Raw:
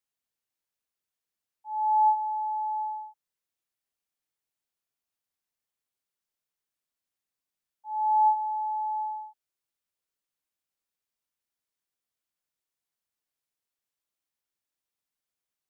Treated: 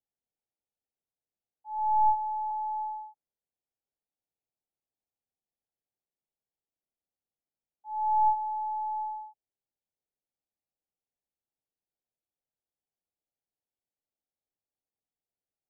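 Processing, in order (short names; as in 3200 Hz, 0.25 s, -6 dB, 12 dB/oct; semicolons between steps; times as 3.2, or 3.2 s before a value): tracing distortion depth 0.062 ms; Chebyshev low-pass 840 Hz, order 5; 1.78–2.51 comb 5.5 ms, depth 56%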